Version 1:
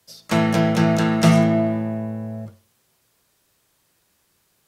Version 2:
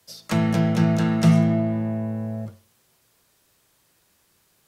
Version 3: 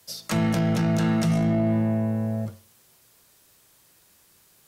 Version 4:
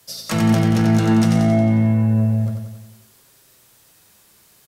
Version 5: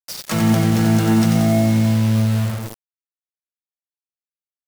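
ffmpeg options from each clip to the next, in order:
-filter_complex "[0:a]acrossover=split=210[s0][s1];[s1]acompressor=threshold=0.0224:ratio=2[s2];[s0][s2]amix=inputs=2:normalize=0,volume=1.19"
-af "highshelf=f=5600:g=5,alimiter=limit=0.119:level=0:latency=1:release=10,volume=1.33"
-filter_complex "[0:a]flanger=delay=7.3:depth=2.3:regen=64:speed=0.61:shape=sinusoidal,asplit=2[s0][s1];[s1]aecho=0:1:90|180|270|360|450|540|630:0.562|0.315|0.176|0.0988|0.0553|0.031|0.0173[s2];[s0][s2]amix=inputs=2:normalize=0,volume=2.51"
-af "acrusher=bits=4:mix=0:aa=0.000001"

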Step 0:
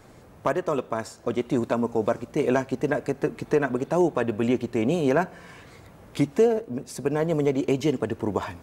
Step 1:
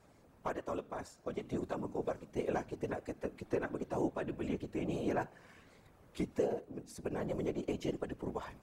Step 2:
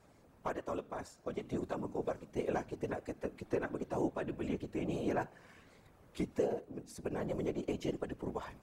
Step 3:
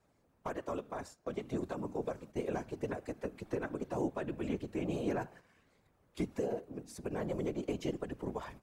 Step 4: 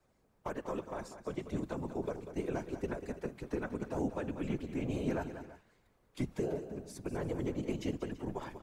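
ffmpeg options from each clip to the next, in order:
-af "bandreject=f=121:t=h:w=4,bandreject=f=242:t=h:w=4,afftfilt=real='hypot(re,im)*cos(2*PI*random(0))':imag='hypot(re,im)*sin(2*PI*random(1))':win_size=512:overlap=0.75,volume=0.422"
-af anull
-filter_complex "[0:a]agate=range=0.316:threshold=0.00224:ratio=16:detection=peak,acrossover=split=290|5600[s0][s1][s2];[s1]alimiter=level_in=1.78:limit=0.0631:level=0:latency=1:release=116,volume=0.562[s3];[s0][s3][s2]amix=inputs=3:normalize=0,volume=1.12"
-filter_complex "[0:a]afreqshift=-53,asplit=2[s0][s1];[s1]aecho=0:1:192|333:0.282|0.141[s2];[s0][s2]amix=inputs=2:normalize=0"

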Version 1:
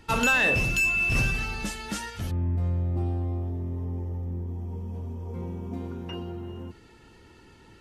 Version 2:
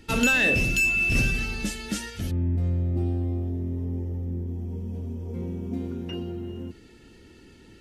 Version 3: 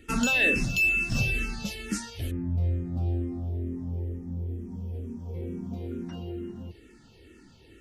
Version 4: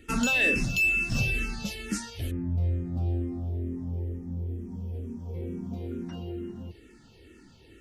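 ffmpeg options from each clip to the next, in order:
-af "equalizer=f=125:t=o:w=1:g=-3,equalizer=f=250:t=o:w=1:g=4,equalizer=f=1000:t=o:w=1:g=-11,volume=1.33"
-filter_complex "[0:a]asplit=2[s0][s1];[s1]afreqshift=-2.2[s2];[s0][s2]amix=inputs=2:normalize=1"
-af "asoftclip=type=tanh:threshold=0.211"

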